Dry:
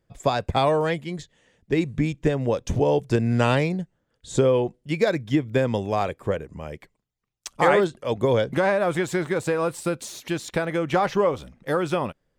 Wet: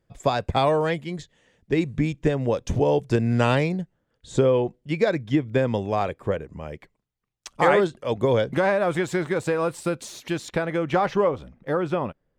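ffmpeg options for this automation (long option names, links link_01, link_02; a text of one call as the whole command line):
ffmpeg -i in.wav -af "asetnsamples=nb_out_samples=441:pad=0,asendcmd='3.81 lowpass f 4300;7.55 lowpass f 7600;10.5 lowpass f 3800;11.28 lowpass f 1600',lowpass=frequency=9100:poles=1" out.wav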